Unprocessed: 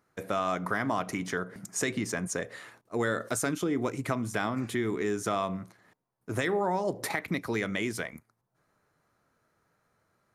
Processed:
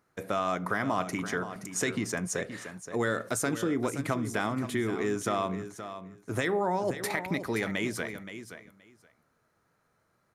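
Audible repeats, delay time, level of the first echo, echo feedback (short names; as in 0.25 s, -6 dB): 2, 0.523 s, -11.0 dB, 15%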